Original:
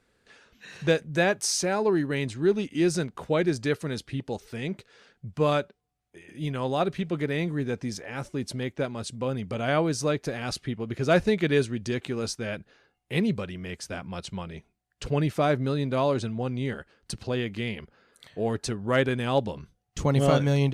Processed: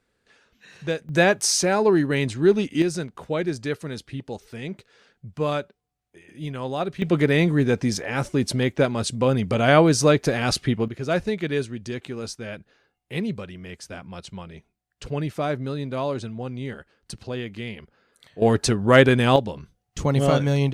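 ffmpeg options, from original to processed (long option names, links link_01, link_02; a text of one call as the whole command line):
ffmpeg -i in.wav -af "asetnsamples=nb_out_samples=441:pad=0,asendcmd='1.09 volume volume 5.5dB;2.82 volume volume -1dB;7.02 volume volume 9dB;10.88 volume volume -2dB;18.42 volume volume 9.5dB;19.36 volume volume 2dB',volume=-3.5dB" out.wav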